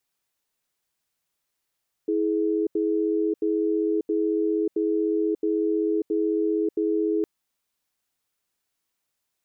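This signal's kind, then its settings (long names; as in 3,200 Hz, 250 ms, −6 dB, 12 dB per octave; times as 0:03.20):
tone pair in a cadence 325 Hz, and 421 Hz, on 0.59 s, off 0.08 s, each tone −23.5 dBFS 5.16 s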